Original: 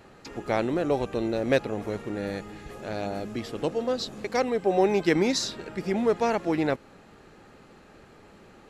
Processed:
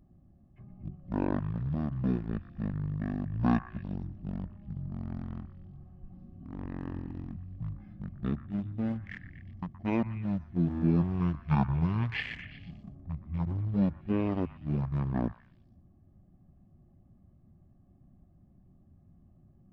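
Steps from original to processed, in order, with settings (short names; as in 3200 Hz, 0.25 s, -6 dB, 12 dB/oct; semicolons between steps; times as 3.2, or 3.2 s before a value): Wiener smoothing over 41 samples; wide varispeed 0.441×; delay with a stepping band-pass 0.12 s, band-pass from 1400 Hz, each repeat 0.7 oct, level -10 dB; gain -4.5 dB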